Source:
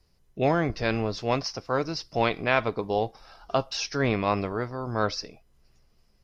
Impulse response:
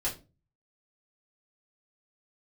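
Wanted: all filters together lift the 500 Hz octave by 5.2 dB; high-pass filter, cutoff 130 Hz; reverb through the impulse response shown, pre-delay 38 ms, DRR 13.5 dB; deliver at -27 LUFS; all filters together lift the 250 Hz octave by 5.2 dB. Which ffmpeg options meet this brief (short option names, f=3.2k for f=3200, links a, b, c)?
-filter_complex "[0:a]highpass=130,equalizer=f=250:t=o:g=5.5,equalizer=f=500:t=o:g=5,asplit=2[a][b];[1:a]atrim=start_sample=2205,adelay=38[c];[b][c]afir=irnorm=-1:irlink=0,volume=-18.5dB[d];[a][d]amix=inputs=2:normalize=0,volume=-3dB"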